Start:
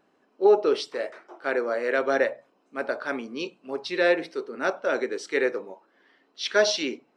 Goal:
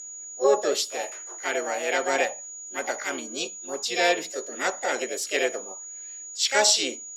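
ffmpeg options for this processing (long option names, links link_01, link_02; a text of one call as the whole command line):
ffmpeg -i in.wav -filter_complex "[0:a]asplit=2[link_01][link_02];[link_02]asetrate=58866,aresample=44100,atempo=0.749154,volume=-2dB[link_03];[link_01][link_03]amix=inputs=2:normalize=0,crystalizer=i=4:c=0,aeval=exprs='val(0)+0.0251*sin(2*PI*6800*n/s)':channel_layout=same,volume=-5dB" out.wav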